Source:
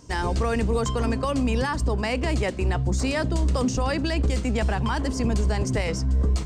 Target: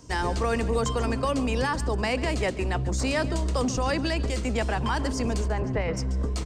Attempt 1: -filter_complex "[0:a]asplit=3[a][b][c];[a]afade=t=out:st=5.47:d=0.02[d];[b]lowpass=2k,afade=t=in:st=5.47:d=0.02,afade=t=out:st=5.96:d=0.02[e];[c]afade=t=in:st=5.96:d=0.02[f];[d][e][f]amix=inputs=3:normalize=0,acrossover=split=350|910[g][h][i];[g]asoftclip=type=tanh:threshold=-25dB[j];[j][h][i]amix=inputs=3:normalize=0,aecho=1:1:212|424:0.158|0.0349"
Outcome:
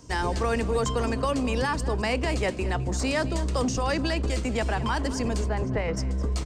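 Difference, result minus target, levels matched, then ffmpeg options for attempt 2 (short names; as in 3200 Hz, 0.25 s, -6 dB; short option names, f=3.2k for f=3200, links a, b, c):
echo 72 ms late
-filter_complex "[0:a]asplit=3[a][b][c];[a]afade=t=out:st=5.47:d=0.02[d];[b]lowpass=2k,afade=t=in:st=5.47:d=0.02,afade=t=out:st=5.96:d=0.02[e];[c]afade=t=in:st=5.96:d=0.02[f];[d][e][f]amix=inputs=3:normalize=0,acrossover=split=350|910[g][h][i];[g]asoftclip=type=tanh:threshold=-25dB[j];[j][h][i]amix=inputs=3:normalize=0,aecho=1:1:140|280:0.158|0.0349"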